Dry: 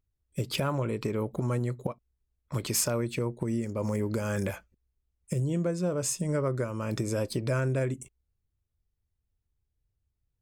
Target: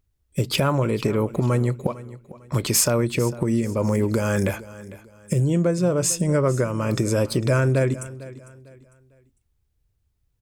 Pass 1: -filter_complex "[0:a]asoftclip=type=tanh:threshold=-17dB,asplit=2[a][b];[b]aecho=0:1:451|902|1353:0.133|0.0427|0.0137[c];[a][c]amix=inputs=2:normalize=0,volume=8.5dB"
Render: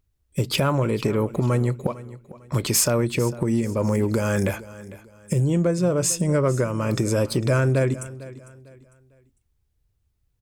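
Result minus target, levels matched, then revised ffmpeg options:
soft clip: distortion +14 dB
-filter_complex "[0:a]asoftclip=type=tanh:threshold=-9.5dB,asplit=2[a][b];[b]aecho=0:1:451|902|1353:0.133|0.0427|0.0137[c];[a][c]amix=inputs=2:normalize=0,volume=8.5dB"

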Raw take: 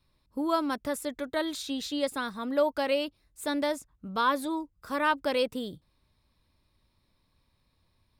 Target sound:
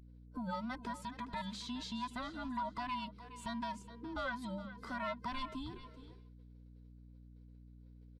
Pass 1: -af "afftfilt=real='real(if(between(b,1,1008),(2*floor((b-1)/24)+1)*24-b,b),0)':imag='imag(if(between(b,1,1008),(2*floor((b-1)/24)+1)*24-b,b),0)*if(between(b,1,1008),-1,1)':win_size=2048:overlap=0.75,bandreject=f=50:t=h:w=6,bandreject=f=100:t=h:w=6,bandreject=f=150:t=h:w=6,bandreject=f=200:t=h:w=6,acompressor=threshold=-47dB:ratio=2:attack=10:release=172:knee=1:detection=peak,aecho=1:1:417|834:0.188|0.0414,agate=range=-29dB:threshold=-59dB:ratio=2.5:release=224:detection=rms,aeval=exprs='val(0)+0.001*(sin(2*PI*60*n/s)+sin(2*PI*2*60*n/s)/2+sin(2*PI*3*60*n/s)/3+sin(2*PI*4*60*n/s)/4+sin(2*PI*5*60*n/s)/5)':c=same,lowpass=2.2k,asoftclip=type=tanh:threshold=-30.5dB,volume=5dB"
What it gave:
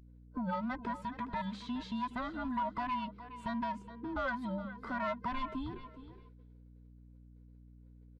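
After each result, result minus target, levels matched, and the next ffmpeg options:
4000 Hz band -7.5 dB; compressor: peak gain reduction -5 dB
-af "afftfilt=real='real(if(between(b,1,1008),(2*floor((b-1)/24)+1)*24-b,b),0)':imag='imag(if(between(b,1,1008),(2*floor((b-1)/24)+1)*24-b,b),0)*if(between(b,1,1008),-1,1)':win_size=2048:overlap=0.75,bandreject=f=50:t=h:w=6,bandreject=f=100:t=h:w=6,bandreject=f=150:t=h:w=6,bandreject=f=200:t=h:w=6,acompressor=threshold=-47dB:ratio=2:attack=10:release=172:knee=1:detection=peak,aecho=1:1:417|834:0.188|0.0414,agate=range=-29dB:threshold=-59dB:ratio=2.5:release=224:detection=rms,aeval=exprs='val(0)+0.001*(sin(2*PI*60*n/s)+sin(2*PI*2*60*n/s)/2+sin(2*PI*3*60*n/s)/3+sin(2*PI*4*60*n/s)/4+sin(2*PI*5*60*n/s)/5)':c=same,lowpass=5.6k,asoftclip=type=tanh:threshold=-30.5dB,volume=5dB"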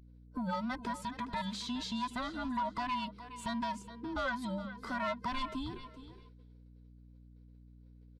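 compressor: peak gain reduction -5 dB
-af "afftfilt=real='real(if(between(b,1,1008),(2*floor((b-1)/24)+1)*24-b,b),0)':imag='imag(if(between(b,1,1008),(2*floor((b-1)/24)+1)*24-b,b),0)*if(between(b,1,1008),-1,1)':win_size=2048:overlap=0.75,bandreject=f=50:t=h:w=6,bandreject=f=100:t=h:w=6,bandreject=f=150:t=h:w=6,bandreject=f=200:t=h:w=6,acompressor=threshold=-57dB:ratio=2:attack=10:release=172:knee=1:detection=peak,aecho=1:1:417|834:0.188|0.0414,agate=range=-29dB:threshold=-59dB:ratio=2.5:release=224:detection=rms,aeval=exprs='val(0)+0.001*(sin(2*PI*60*n/s)+sin(2*PI*2*60*n/s)/2+sin(2*PI*3*60*n/s)/3+sin(2*PI*4*60*n/s)/4+sin(2*PI*5*60*n/s)/5)':c=same,lowpass=5.6k,asoftclip=type=tanh:threshold=-30.5dB,volume=5dB"

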